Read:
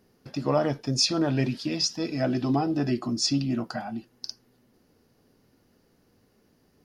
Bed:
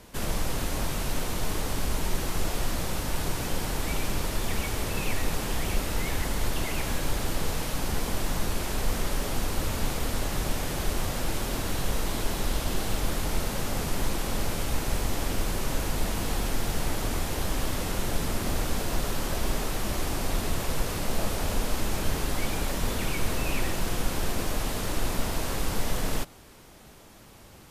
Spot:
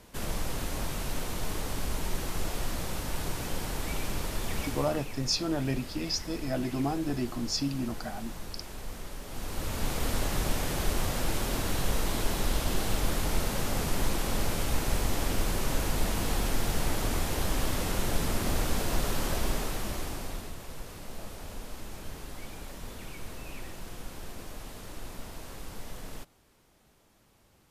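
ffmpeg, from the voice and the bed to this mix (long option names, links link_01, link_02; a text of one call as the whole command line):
ffmpeg -i stem1.wav -i stem2.wav -filter_complex "[0:a]adelay=4300,volume=-5.5dB[link_01];[1:a]volume=8dB,afade=type=out:start_time=4.62:duration=0.45:silence=0.375837,afade=type=in:start_time=9.26:duration=0.83:silence=0.251189,afade=type=out:start_time=19.28:duration=1.27:silence=0.223872[link_02];[link_01][link_02]amix=inputs=2:normalize=0" out.wav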